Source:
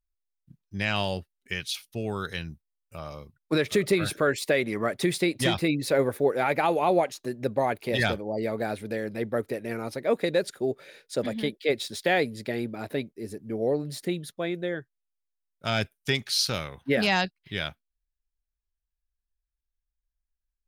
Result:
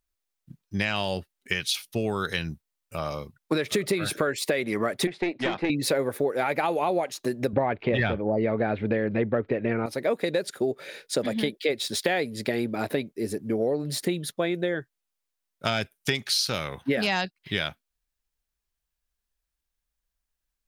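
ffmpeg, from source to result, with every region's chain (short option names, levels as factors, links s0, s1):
-filter_complex "[0:a]asettb=1/sr,asplit=3[s0][s1][s2];[s0]atrim=end=5.074[s3];[s1]atrim=start=5.07:end=5.7,asetpts=PTS-STARTPTS,afade=t=in:d=0.004:c=qsin,afade=t=out:st=0.626:d=0.004:c=qsin,highpass=210,lowpass=2100,aeval=exprs='(tanh(10*val(0)+0.75)-tanh(0.75))/10':c=same[s4];[s2]atrim=start=5.696[s5];[s3][s4]acrossfade=d=0.004:c1=hsin:c2=qsin[s6];[s6][s5]acrossfade=d=0.004:c1=qsin:c2=hsin,asettb=1/sr,asplit=3[s7][s8][s9];[s7]atrim=end=7.534[s10];[s8]atrim=start=7.53:end=9.86,asetpts=PTS-STARTPTS,afade=t=in:d=0.004:c=qsin,afade=t=out:st=2.326:d=0.004:c=qsin,lowpass=f=3000:w=0.5412,lowpass=f=3000:w=1.3066,lowshelf=f=130:g=11,acontrast=78[s11];[s9]atrim=start=9.856[s12];[s10][s11]acrossfade=d=0.004:c1=hsin:c2=qsin[s13];[s13][s12]acrossfade=d=0.004:c1=qsin:c2=hsin,lowshelf=f=75:g=-11,acompressor=threshold=0.0282:ratio=6,volume=2.66"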